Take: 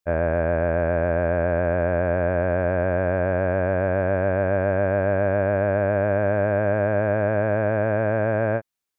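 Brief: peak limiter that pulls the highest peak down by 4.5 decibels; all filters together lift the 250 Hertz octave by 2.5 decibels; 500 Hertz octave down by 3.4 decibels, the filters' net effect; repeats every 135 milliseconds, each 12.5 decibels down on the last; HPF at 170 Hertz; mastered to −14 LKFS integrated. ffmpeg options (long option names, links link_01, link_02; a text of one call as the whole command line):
ffmpeg -i in.wav -af "highpass=170,equalizer=frequency=250:width_type=o:gain=6.5,equalizer=frequency=500:width_type=o:gain=-5.5,alimiter=limit=-16dB:level=0:latency=1,aecho=1:1:135|270|405:0.237|0.0569|0.0137,volume=14dB" out.wav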